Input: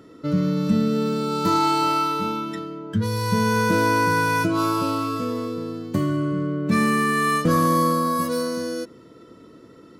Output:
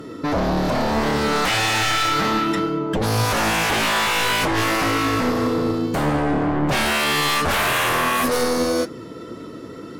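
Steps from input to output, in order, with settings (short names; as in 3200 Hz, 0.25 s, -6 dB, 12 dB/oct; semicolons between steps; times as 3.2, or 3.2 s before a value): in parallel at -1.5 dB: limiter -20 dBFS, peak gain reduction 11 dB; on the sum: sine folder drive 13 dB, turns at -6.5 dBFS; flange 1.8 Hz, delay 6 ms, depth 6.2 ms, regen +71%; gain -6 dB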